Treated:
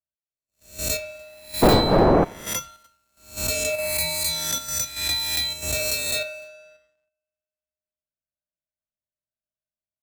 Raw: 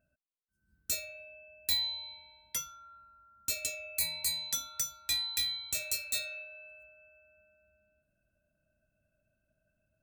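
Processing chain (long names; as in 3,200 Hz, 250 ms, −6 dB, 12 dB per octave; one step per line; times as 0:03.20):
peak hold with a rise ahead of every peak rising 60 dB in 0.95 s
0:01.61–0:02.23: wind on the microphone 610 Hz −32 dBFS
high-shelf EQ 2,400 Hz −12 dB
single-tap delay 297 ms −23.5 dB
on a send at −22.5 dB: convolution reverb RT60 0.35 s, pre-delay 5 ms
on the sum: leveller curve on the samples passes 3
in parallel at +0.5 dB: output level in coarse steps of 17 dB
on the sum: parametric band 640 Hz +3 dB 1.7 octaves
multiband upward and downward expander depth 70%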